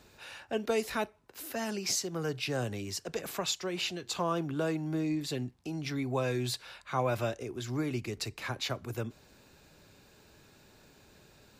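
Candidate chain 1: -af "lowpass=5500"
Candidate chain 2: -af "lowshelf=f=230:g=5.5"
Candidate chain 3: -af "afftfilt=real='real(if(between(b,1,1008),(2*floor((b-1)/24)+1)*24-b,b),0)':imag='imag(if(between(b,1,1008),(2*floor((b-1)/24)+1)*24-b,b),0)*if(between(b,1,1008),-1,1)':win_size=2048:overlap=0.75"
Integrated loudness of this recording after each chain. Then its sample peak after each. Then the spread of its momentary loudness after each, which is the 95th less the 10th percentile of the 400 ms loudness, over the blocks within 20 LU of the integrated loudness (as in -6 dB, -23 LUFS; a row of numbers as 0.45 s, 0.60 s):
-34.5 LUFS, -32.5 LUFS, -34.5 LUFS; -18.5 dBFS, -17.0 dBFS, -18.5 dBFS; 7 LU, 7 LU, 7 LU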